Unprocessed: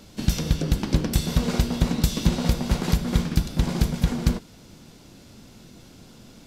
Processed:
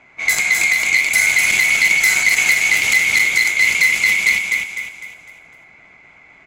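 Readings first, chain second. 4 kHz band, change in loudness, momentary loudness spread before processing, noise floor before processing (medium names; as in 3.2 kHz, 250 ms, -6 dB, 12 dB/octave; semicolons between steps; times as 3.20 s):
+11.5 dB, +12.0 dB, 3 LU, -49 dBFS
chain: split-band scrambler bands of 2 kHz; level-controlled noise filter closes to 1.1 kHz, open at -20 dBFS; treble shelf 5.7 kHz +9 dB; in parallel at -2.5 dB: level held to a coarse grid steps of 17 dB; on the sum: transient shaper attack -8 dB, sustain +1 dB; on a send: feedback delay 252 ms, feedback 41%, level -4 dB; on the sum: transformer saturation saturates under 2.5 kHz; trim +6 dB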